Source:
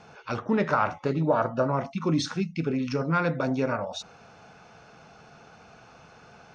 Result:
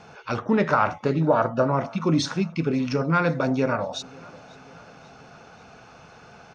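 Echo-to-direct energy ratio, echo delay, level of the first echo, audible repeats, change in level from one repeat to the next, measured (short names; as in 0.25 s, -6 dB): -22.5 dB, 0.539 s, -24.0 dB, 3, -5.0 dB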